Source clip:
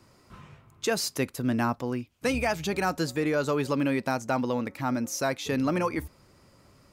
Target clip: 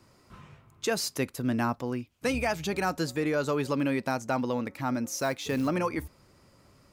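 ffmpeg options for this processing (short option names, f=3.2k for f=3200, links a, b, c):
-filter_complex "[0:a]asplit=3[a][b][c];[a]afade=t=out:st=5.19:d=0.02[d];[b]acrusher=bits=6:mode=log:mix=0:aa=0.000001,afade=t=in:st=5.19:d=0.02,afade=t=out:st=5.67:d=0.02[e];[c]afade=t=in:st=5.67:d=0.02[f];[d][e][f]amix=inputs=3:normalize=0,volume=-1.5dB"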